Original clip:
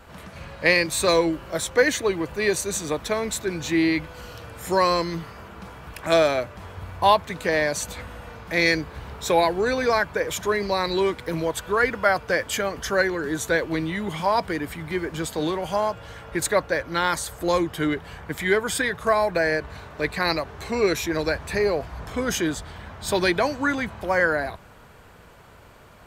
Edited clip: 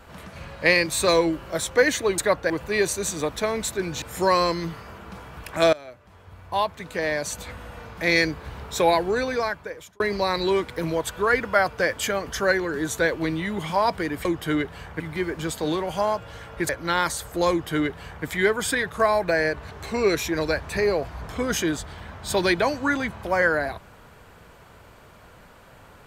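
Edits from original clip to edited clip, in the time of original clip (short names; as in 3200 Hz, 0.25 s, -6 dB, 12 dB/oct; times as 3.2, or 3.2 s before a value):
3.7–4.52 cut
6.23–8.33 fade in, from -22 dB
9.54–10.5 fade out
16.44–16.76 move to 2.18
17.57–18.32 copy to 14.75
19.78–20.49 cut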